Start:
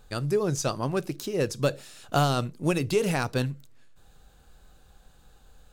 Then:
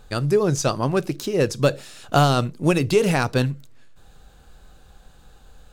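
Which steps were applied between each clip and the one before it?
high-shelf EQ 8,200 Hz −5 dB
level +6.5 dB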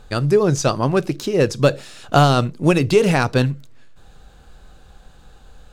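high-shelf EQ 10,000 Hz −9 dB
level +3.5 dB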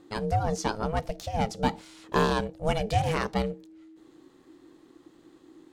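ring modulation 320 Hz
level −8 dB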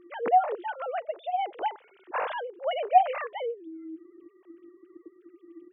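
three sine waves on the formant tracks

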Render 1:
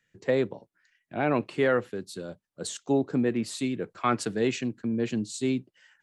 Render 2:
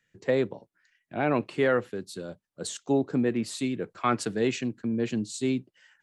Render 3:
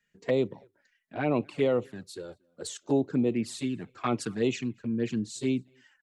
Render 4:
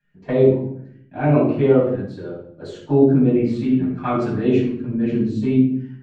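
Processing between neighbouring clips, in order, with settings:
no processing that can be heard
slap from a distant wall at 40 metres, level −29 dB; flanger swept by the level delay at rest 4.9 ms, full sweep at −21.5 dBFS
head-to-tape spacing loss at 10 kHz 33 dB; rectangular room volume 970 cubic metres, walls furnished, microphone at 8.4 metres; level +1.5 dB

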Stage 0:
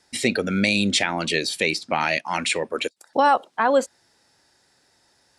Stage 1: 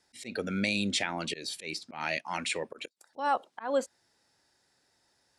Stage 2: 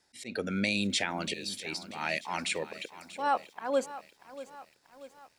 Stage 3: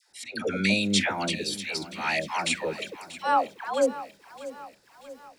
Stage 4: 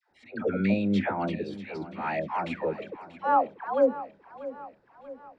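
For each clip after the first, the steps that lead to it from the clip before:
volume swells 159 ms; level −9 dB
feedback echo at a low word length 637 ms, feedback 55%, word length 9 bits, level −15 dB
all-pass dispersion lows, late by 108 ms, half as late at 730 Hz; level +5.5 dB
low-pass filter 1,200 Hz 12 dB per octave; level +1.5 dB

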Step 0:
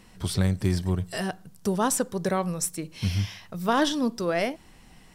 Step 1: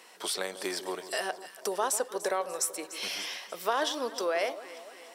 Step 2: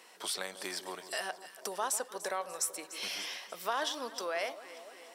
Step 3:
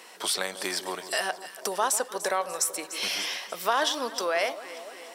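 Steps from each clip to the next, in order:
high-pass filter 420 Hz 24 dB per octave; downward compressor 2 to 1, threshold −35 dBFS, peak gain reduction 9 dB; delay that swaps between a low-pass and a high-pass 147 ms, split 1,100 Hz, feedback 72%, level −12.5 dB; level +4 dB
dynamic equaliser 400 Hz, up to −7 dB, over −46 dBFS, Q 1.2; level −3 dB
de-essing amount 50%; level +8.5 dB

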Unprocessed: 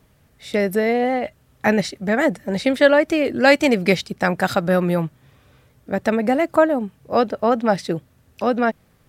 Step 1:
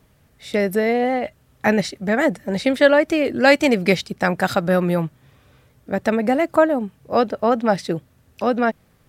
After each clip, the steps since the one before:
no processing that can be heard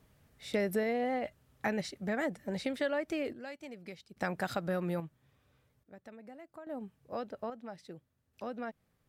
downward compressor 2.5 to 1, threshold −20 dBFS, peak gain reduction 8.5 dB
sample-and-hold tremolo 1.2 Hz, depth 90%
level −8.5 dB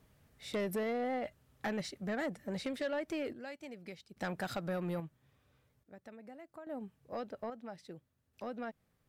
soft clipping −28.5 dBFS, distortion −15 dB
level −1 dB

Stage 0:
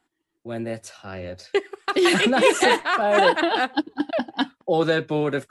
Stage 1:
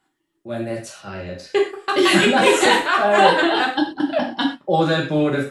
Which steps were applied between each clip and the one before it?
reverb whose tail is shaped and stops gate 150 ms falling, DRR −1.5 dB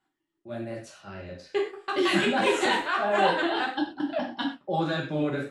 high-shelf EQ 9,000 Hz −10.5 dB
notch filter 480 Hz, Q 12
flanger 1.6 Hz, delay 7.5 ms, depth 7.4 ms, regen −60%
level −4.5 dB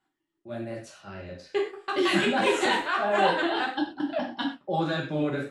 no processing that can be heard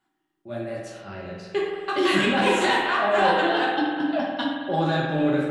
in parallel at −3.5 dB: soft clipping −19.5 dBFS, distortion −15 dB
on the sum: spring reverb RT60 1.9 s, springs 50 ms, chirp 60 ms, DRR 2 dB
level −2 dB

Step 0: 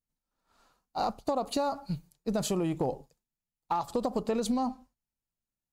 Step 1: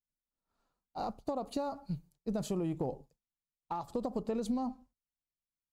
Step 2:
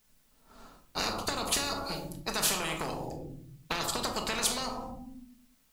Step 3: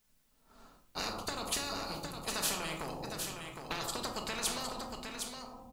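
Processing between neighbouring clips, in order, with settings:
noise gate −59 dBFS, range −7 dB; tilt shelving filter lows +4 dB, about 680 Hz; level −7 dB
rectangular room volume 670 cubic metres, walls furnished, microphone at 1.5 metres; every bin compressed towards the loudest bin 10 to 1; level +6.5 dB
single-tap delay 761 ms −6 dB; level −5.5 dB

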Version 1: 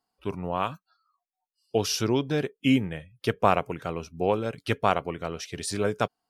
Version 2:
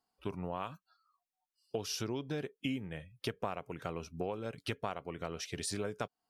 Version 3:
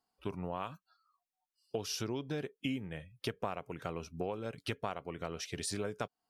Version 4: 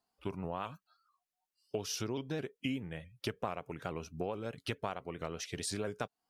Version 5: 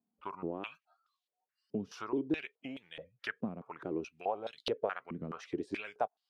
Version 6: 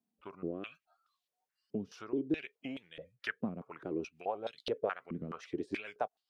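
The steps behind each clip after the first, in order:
downward compressor 6 to 1, threshold −31 dBFS, peak gain reduction 15.5 dB; level −3 dB
no processing that can be heard
pitch modulation by a square or saw wave saw up 4.6 Hz, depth 100 cents
band-pass on a step sequencer 4.7 Hz 220–3,700 Hz; level +12 dB
rotating-speaker cabinet horn 0.6 Hz, later 7 Hz, at 0:02.55; level +2 dB

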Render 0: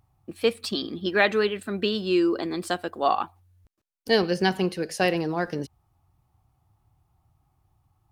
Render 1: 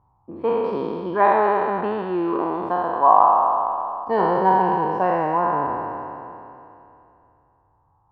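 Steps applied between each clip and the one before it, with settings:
peak hold with a decay on every bin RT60 2.82 s
low-pass with resonance 980 Hz, resonance Q 12
level −4 dB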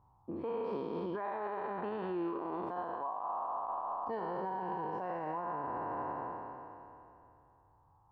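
downward compressor 3 to 1, threshold −26 dBFS, peak gain reduction 13 dB
brickwall limiter −26 dBFS, peak gain reduction 11.5 dB
level −4 dB

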